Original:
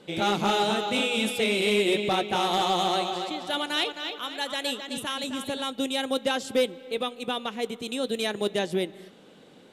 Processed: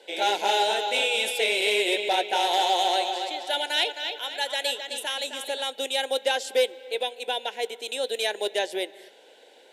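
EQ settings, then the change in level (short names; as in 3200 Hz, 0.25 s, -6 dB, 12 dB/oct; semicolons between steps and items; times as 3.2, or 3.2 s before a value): HPF 450 Hz 24 dB/oct; Butterworth band-stop 1200 Hz, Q 2.8; +3.0 dB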